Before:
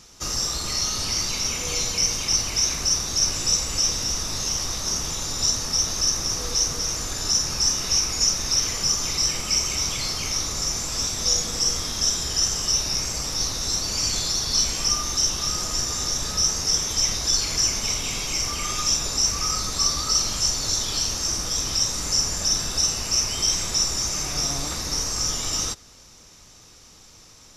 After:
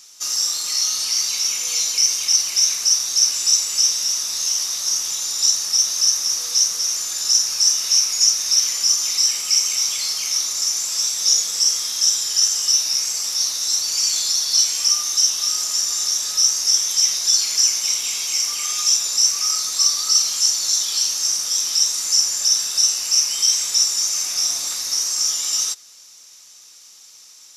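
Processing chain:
high-pass filter 1,400 Hz 6 dB per octave
high-shelf EQ 3,700 Hz +11.5 dB
level −2.5 dB

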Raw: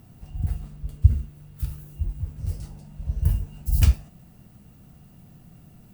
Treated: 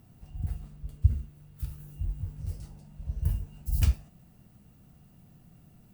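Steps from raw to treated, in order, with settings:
0:01.78–0:02.43: double-tracking delay 21 ms −3 dB
level −6.5 dB

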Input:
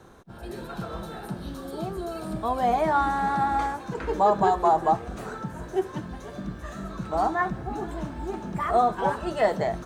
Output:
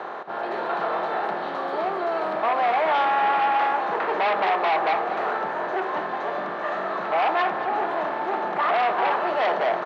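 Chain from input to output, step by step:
compressor on every frequency bin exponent 0.6
in parallel at −9.5 dB: sine wavefolder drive 13 dB, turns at −7 dBFS
on the sum: high-pass filter 580 Hz 12 dB per octave
high-frequency loss of the air 290 metres
single-tap delay 228 ms −13 dB
level −3.5 dB

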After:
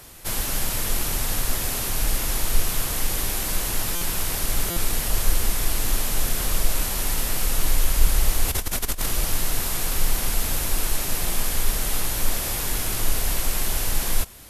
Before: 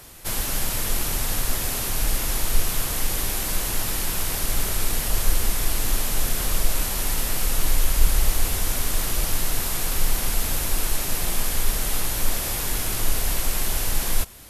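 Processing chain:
0:08.48–0:09.06: compressor whose output falls as the input rises −24 dBFS, ratio −0.5
buffer that repeats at 0:03.95/0:04.70, samples 256, times 10

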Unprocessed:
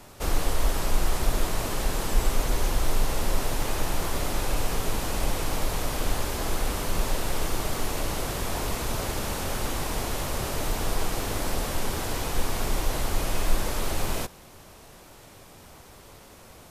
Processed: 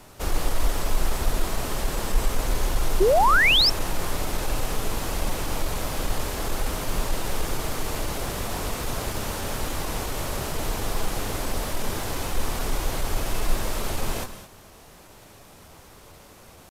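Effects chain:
reverb whose tail is shaped and stops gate 240 ms rising, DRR 10.5 dB
pitch shifter +0.5 semitones
sound drawn into the spectrogram rise, 0:03.00–0:03.70, 350–5,600 Hz −18 dBFS

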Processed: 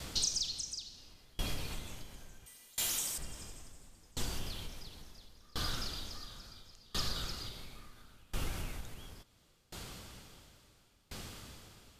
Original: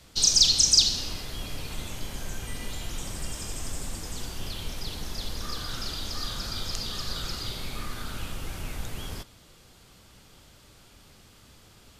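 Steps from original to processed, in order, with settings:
0:02.46–0:03.18: RIAA equalisation recording
downward compressor 2.5 to 1, threshold −45 dBFS, peak gain reduction 20 dB
tremolo with a ramp in dB decaying 0.72 Hz, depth 29 dB
level +10.5 dB

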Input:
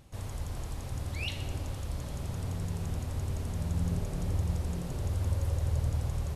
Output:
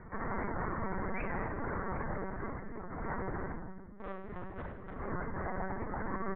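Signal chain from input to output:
Butterworth low-pass 2,000 Hz 96 dB per octave
reverb reduction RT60 1.3 s
high-pass filter 220 Hz 24 dB per octave
parametric band 520 Hz −10.5 dB 0.95 octaves
comb filter 5.3 ms, depth 60%
compressor whose output falls as the input rises −53 dBFS, ratio −0.5
0:03.97–0:04.97: tube saturation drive 49 dB, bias 0.4
repeating echo 75 ms, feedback 21%, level −16.5 dB
rectangular room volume 760 cubic metres, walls mixed, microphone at 1.6 metres
linear-prediction vocoder at 8 kHz pitch kept
wow of a warped record 78 rpm, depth 100 cents
level +12.5 dB

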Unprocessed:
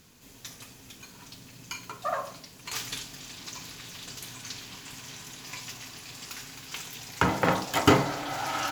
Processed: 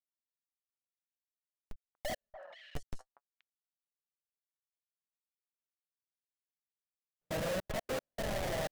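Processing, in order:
drawn EQ curve 170 Hz 0 dB, 290 Hz −10 dB, 600 Hz +14 dB, 1,200 Hz −30 dB, 1,800 Hz −8 dB, 3,000 Hz −17 dB, 5,000 Hz −5 dB, 7,400 Hz −14 dB
comparator with hysteresis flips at −31.5 dBFS
on a send: echo through a band-pass that steps 239 ms, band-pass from 1,000 Hz, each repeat 1.4 octaves, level −6.5 dB
on the sum: flanger 0.5 Hz, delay 3.5 ms, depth 4.4 ms, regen +43%
gate pattern "xxx.x.x..xxxxx." 154 BPM −60 dB

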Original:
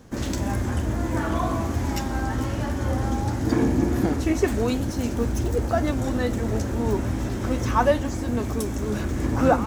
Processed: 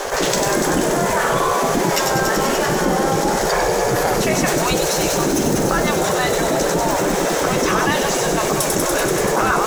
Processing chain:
low-shelf EQ 420 Hz +9.5 dB
gate on every frequency bin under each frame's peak −15 dB weak
on a send: delay with a high-pass on its return 96 ms, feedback 83%, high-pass 4,500 Hz, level −3 dB
on the sum: envelope flattener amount 70%
level +8.5 dB

